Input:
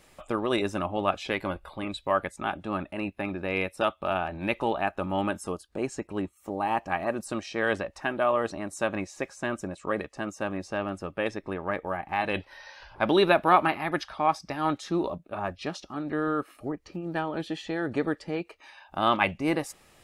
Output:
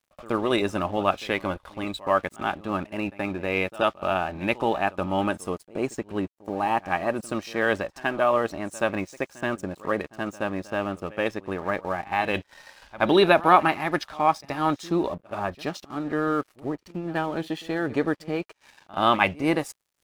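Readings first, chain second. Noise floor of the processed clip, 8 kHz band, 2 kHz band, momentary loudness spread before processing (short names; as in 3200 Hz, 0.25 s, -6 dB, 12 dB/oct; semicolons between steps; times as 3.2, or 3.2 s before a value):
-66 dBFS, +1.0 dB, +3.0 dB, 10 LU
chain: crossover distortion -50.5 dBFS; pre-echo 76 ms -19.5 dB; gain +3.5 dB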